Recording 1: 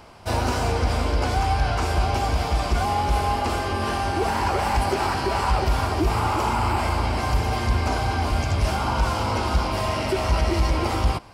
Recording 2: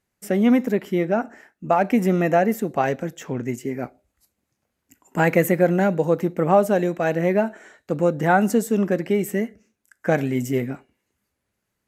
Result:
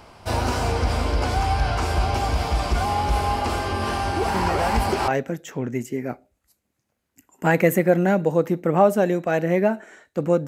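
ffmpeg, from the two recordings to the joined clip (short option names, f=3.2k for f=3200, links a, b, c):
-filter_complex "[1:a]asplit=2[a][b];[0:a]apad=whole_dur=10.47,atrim=end=10.47,atrim=end=5.082[c];[b]atrim=start=2.808:end=8.2[d];[a]atrim=start=2.07:end=2.81,asetpts=PTS-STARTPTS,volume=-8.5dB,afade=t=in:d=0.004:c=hsin,afade=t=out:st=0.736:d=0.004:c=hsin,adelay=4340[e];[c][d]acrossfade=d=0.004:c1=hsin:c2=hsin[f];[f][e]amix=inputs=2:normalize=0"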